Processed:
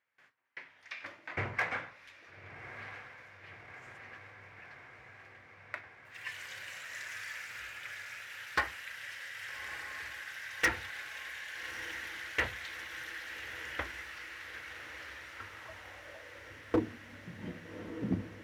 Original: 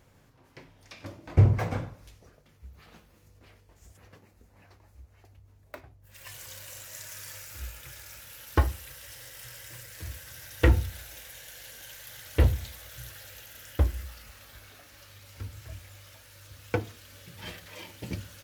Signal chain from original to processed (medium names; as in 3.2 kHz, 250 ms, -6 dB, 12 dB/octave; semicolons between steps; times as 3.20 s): gate with hold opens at -49 dBFS; band-pass sweep 1.9 kHz -> 240 Hz, 15.10–16.97 s; overload inside the chain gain 32 dB; echo that smears into a reverb 1237 ms, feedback 74%, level -11 dB; trim +10 dB